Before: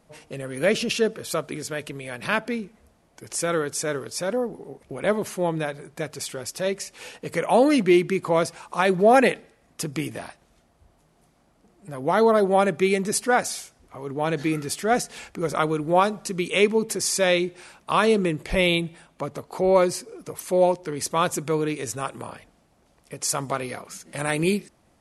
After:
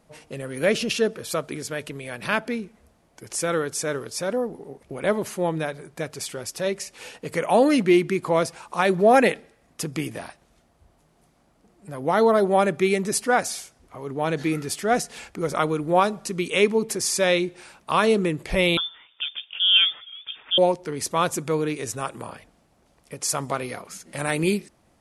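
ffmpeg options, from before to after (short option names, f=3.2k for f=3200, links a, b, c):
-filter_complex "[0:a]asettb=1/sr,asplit=3[a][b][c];[a]atrim=end=18.774[d];[b]atrim=start=18.77:end=20.58,asetpts=PTS-STARTPTS,afade=t=in:d=0.004:c=qsin,afade=t=out:st=1.806:d=0.004:c=qsin,lowpass=f=3.1k:t=q:w=0.5098,lowpass=f=3.1k:t=q:w=0.6013,lowpass=f=3.1k:t=q:w=0.9,lowpass=f=3.1k:t=q:w=2.563,afreqshift=-3700[e];[c]atrim=start=20.576[f];[d][e]acrossfade=d=0.004:c1=hsin:c2=qsin[g];[g][f]acrossfade=d=0.004:c1=qsin:c2=hsin"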